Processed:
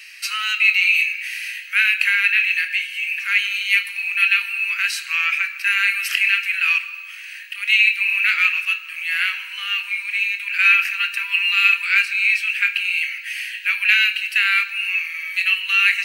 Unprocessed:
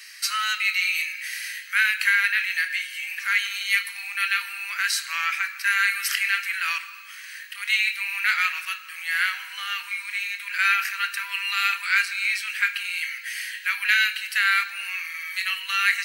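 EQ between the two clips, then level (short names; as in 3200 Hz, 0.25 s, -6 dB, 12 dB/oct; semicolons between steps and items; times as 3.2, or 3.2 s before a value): HPF 710 Hz 24 dB/oct; bell 2600 Hz +15 dB 0.44 oct; -3.0 dB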